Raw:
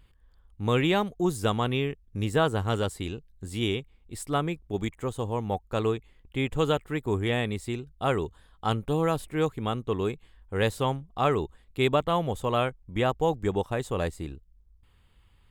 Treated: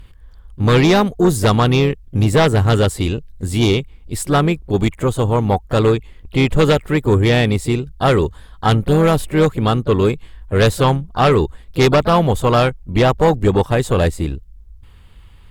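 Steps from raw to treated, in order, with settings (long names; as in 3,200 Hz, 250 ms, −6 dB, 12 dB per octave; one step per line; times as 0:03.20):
low-shelf EQ 120 Hz +5 dB
pitch-shifted copies added +4 semitones −14 dB
sine wavefolder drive 7 dB, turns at −9 dBFS
level +2.5 dB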